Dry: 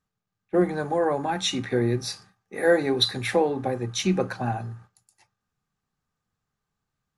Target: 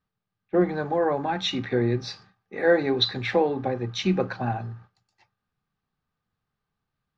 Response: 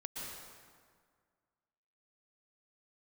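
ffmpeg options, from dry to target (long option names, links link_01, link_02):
-af "lowpass=frequency=4700:width=0.5412,lowpass=frequency=4700:width=1.3066"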